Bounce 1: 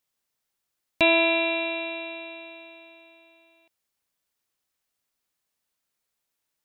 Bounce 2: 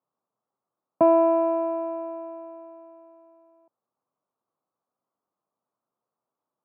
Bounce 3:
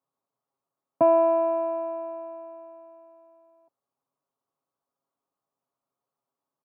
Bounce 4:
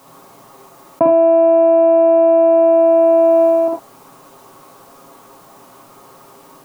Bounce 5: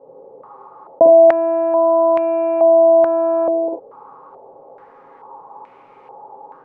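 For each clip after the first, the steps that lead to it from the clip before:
Chebyshev band-pass 110–1200 Hz, order 4; bass shelf 150 Hz -9 dB; trim +6.5 dB
comb 7.3 ms, depth 52%; trim -2.5 dB
reverberation, pre-delay 42 ms, DRR -2 dB; level flattener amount 100%; trim +1.5 dB
small resonant body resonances 480/840 Hz, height 16 dB, ringing for 35 ms; step-sequenced low-pass 2.3 Hz 520–2300 Hz; trim -10.5 dB

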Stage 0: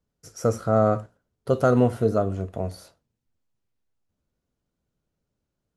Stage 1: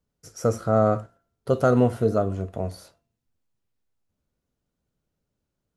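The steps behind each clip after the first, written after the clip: de-hum 340.6 Hz, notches 8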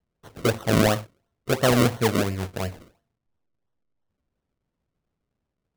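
decimation with a swept rate 36×, swing 100% 2.9 Hz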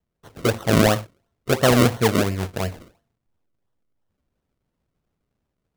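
level rider gain up to 3.5 dB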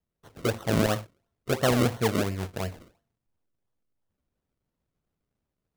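transformer saturation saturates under 210 Hz; trim -6 dB

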